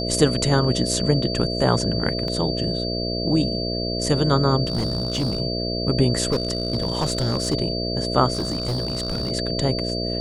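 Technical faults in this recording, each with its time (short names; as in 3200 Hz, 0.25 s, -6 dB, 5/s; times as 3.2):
buzz 60 Hz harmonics 11 -27 dBFS
tone 4600 Hz -28 dBFS
2.28 gap 2.5 ms
4.65–5.41 clipped -18.5 dBFS
6.32–7.55 clipped -16.5 dBFS
8.33–9.32 clipped -20.5 dBFS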